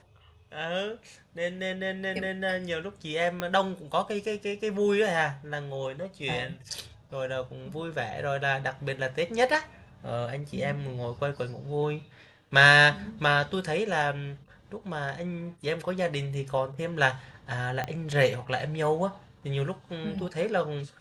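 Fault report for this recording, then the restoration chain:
0:03.40: click −15 dBFS
0:17.84: click −17 dBFS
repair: click removal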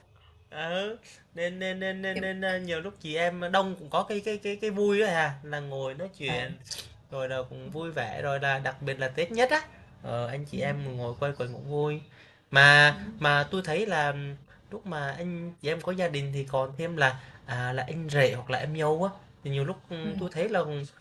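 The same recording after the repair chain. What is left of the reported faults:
0:03.40: click
0:17.84: click

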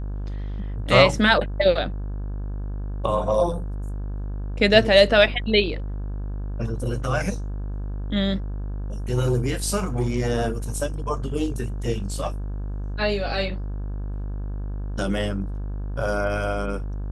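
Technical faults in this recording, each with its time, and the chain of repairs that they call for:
mains buzz 50 Hz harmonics 34 −29 dBFS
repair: hum removal 50 Hz, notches 34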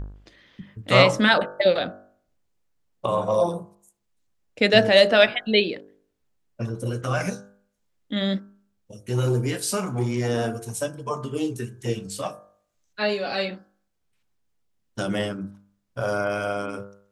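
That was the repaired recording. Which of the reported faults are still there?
none of them is left

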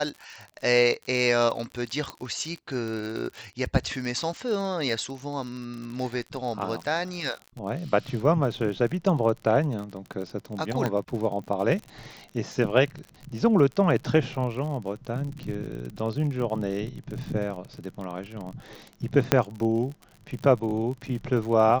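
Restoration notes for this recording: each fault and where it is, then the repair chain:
surface crackle 53 per second −33 dBFS
0:02.10: click −19 dBFS
0:10.86: click −13 dBFS
0:19.32: click −2 dBFS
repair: click removal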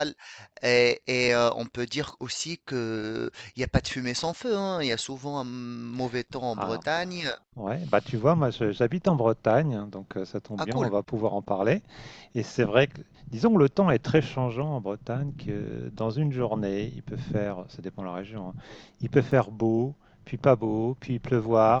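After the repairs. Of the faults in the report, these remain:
0:02.10: click
0:19.32: click

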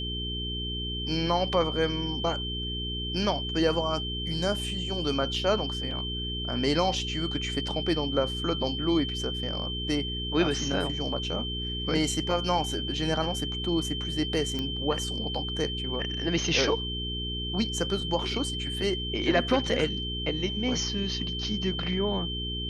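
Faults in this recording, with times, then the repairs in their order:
mains hum 60 Hz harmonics 7 −35 dBFS
whistle 3,100 Hz −33 dBFS
0:05.91: drop-out 2.7 ms
0:14.59: click −18 dBFS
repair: click removal
hum removal 60 Hz, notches 7
notch filter 3,100 Hz, Q 30
repair the gap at 0:05.91, 2.7 ms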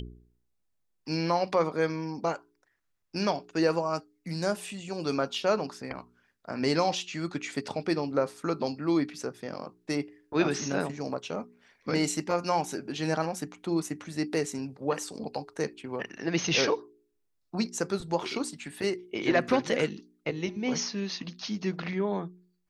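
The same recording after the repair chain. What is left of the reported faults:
none of them is left

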